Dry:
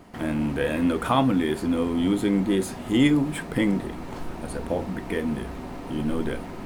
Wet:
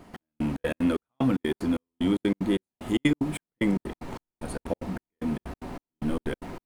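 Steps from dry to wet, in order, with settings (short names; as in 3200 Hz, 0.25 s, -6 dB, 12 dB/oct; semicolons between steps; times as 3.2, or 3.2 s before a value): step gate "xx...xx.x." 187 bpm -60 dB; gain -1.5 dB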